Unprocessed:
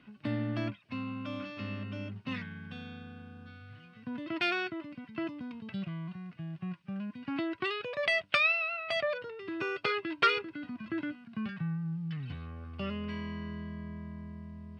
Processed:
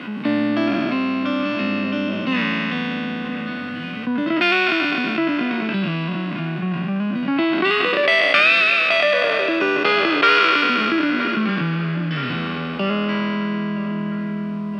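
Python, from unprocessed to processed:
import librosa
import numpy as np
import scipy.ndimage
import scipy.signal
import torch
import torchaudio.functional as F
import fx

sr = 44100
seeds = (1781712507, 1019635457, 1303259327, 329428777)

y = fx.spec_trails(x, sr, decay_s=2.44)
y = scipy.signal.sosfilt(scipy.signal.butter(4, 190.0, 'highpass', fs=sr, output='sos'), y)
y = fx.high_shelf(y, sr, hz=6400.0, db=-11.5)
y = fx.echo_filtered(y, sr, ms=971, feedback_pct=48, hz=3200.0, wet_db=-18)
y = fx.env_flatten(y, sr, amount_pct=50)
y = F.gain(torch.from_numpy(y), 8.0).numpy()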